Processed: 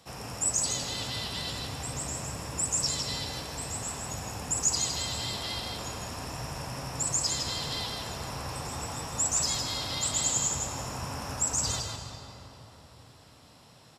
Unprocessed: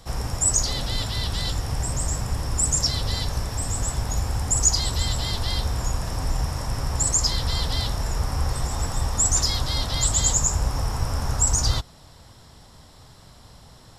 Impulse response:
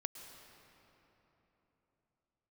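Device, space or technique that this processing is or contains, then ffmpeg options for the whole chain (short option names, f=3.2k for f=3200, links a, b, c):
PA in a hall: -filter_complex "[0:a]highpass=140,equalizer=f=2.6k:t=o:w=0.26:g=7.5,aecho=1:1:159:0.562[a];[1:a]atrim=start_sample=2205[b];[a][b]afir=irnorm=-1:irlink=0,volume=-4.5dB"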